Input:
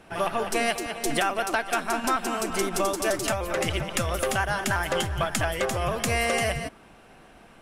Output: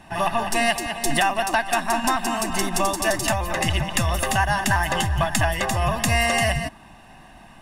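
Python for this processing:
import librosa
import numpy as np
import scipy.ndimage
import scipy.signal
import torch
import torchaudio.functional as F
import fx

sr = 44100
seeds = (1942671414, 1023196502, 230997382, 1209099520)

y = x + 0.74 * np.pad(x, (int(1.1 * sr / 1000.0), 0))[:len(x)]
y = y * 10.0 ** (3.0 / 20.0)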